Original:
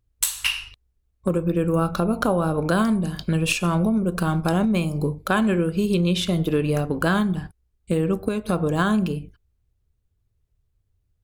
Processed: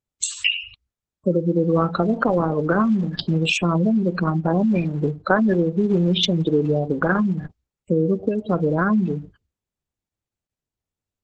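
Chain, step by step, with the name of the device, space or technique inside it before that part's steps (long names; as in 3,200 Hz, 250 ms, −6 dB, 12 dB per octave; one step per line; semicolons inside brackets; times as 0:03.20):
noise gate with hold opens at −53 dBFS
noise-suppressed video call (high-pass filter 150 Hz 6 dB per octave; gate on every frequency bin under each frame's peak −15 dB strong; level +4 dB; Opus 12 kbit/s 48,000 Hz)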